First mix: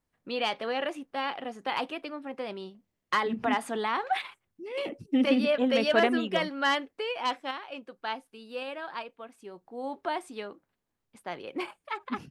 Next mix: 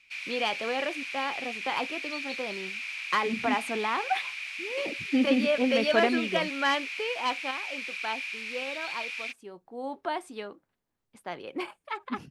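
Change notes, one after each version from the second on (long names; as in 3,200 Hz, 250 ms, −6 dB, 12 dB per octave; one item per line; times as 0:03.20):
background: unmuted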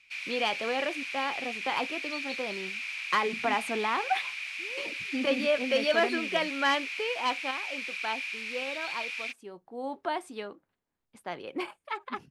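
second voice −8.5 dB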